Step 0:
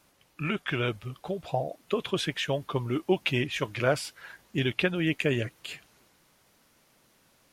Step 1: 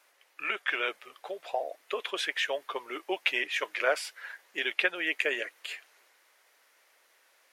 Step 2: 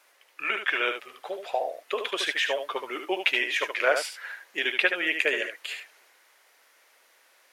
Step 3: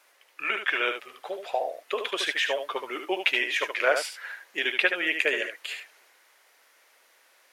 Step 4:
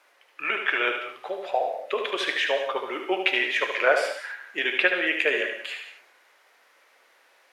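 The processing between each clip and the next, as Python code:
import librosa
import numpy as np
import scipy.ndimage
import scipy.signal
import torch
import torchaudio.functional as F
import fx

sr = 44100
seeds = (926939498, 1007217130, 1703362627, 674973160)

y1 = scipy.signal.sosfilt(scipy.signal.butter(4, 440.0, 'highpass', fs=sr, output='sos'), x)
y1 = fx.peak_eq(y1, sr, hz=1900.0, db=7.5, octaves=0.82)
y1 = F.gain(torch.from_numpy(y1), -2.0).numpy()
y2 = y1 + 10.0 ** (-7.0 / 20.0) * np.pad(y1, (int(74 * sr / 1000.0), 0))[:len(y1)]
y2 = F.gain(torch.from_numpy(y2), 3.5).numpy()
y3 = y2
y4 = fx.high_shelf(y3, sr, hz=5300.0, db=-12.0)
y4 = fx.rev_gated(y4, sr, seeds[0], gate_ms=210, shape='flat', drr_db=6.0)
y4 = F.gain(torch.from_numpy(y4), 2.5).numpy()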